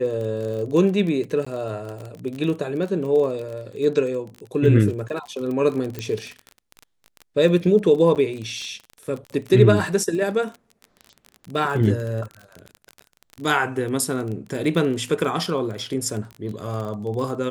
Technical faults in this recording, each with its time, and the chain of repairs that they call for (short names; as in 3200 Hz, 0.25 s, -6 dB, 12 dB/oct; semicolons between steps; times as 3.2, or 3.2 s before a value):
crackle 27/s -28 dBFS
1.45–1.47 gap 15 ms
5.99 pop -15 dBFS
8.15–8.16 gap 8.1 ms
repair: de-click; interpolate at 1.45, 15 ms; interpolate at 8.15, 8.1 ms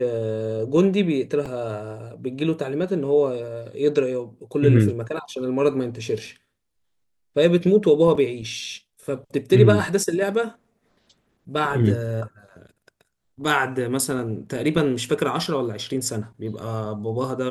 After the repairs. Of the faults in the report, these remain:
5.99 pop